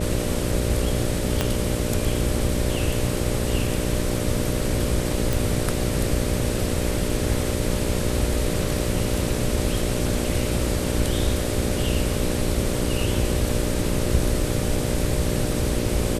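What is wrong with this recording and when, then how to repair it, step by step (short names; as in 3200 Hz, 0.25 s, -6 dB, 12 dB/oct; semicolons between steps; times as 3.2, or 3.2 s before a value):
buzz 60 Hz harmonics 10 -27 dBFS
1.41 pop -6 dBFS
5.33 pop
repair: de-click; de-hum 60 Hz, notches 10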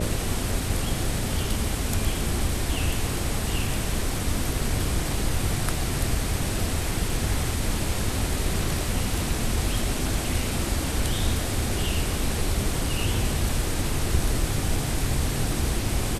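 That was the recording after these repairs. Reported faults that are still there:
1.41 pop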